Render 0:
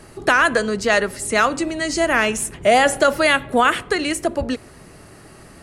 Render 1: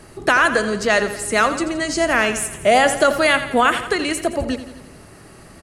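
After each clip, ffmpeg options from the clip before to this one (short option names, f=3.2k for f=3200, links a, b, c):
-af "aecho=1:1:85|170|255|340|425|510:0.251|0.143|0.0816|0.0465|0.0265|0.0151"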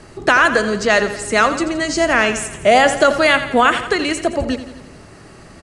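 -af "lowpass=f=8.3k:w=0.5412,lowpass=f=8.3k:w=1.3066,volume=2.5dB"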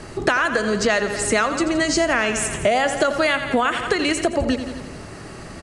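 -af "acompressor=threshold=-21dB:ratio=6,volume=4.5dB"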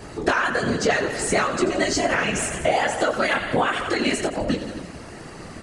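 -af "flanger=delay=18:depth=4.3:speed=1.3,acontrast=83,afftfilt=real='hypot(re,im)*cos(2*PI*random(0))':imag='hypot(re,im)*sin(2*PI*random(1))':win_size=512:overlap=0.75"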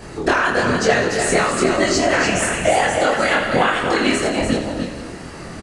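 -filter_complex "[0:a]asplit=2[a][b];[b]aecho=0:1:78|195:0.237|0.141[c];[a][c]amix=inputs=2:normalize=0,flanger=delay=22.5:depth=5.2:speed=1.1,asplit=2[d][e];[e]aecho=0:1:295:0.501[f];[d][f]amix=inputs=2:normalize=0,volume=6.5dB"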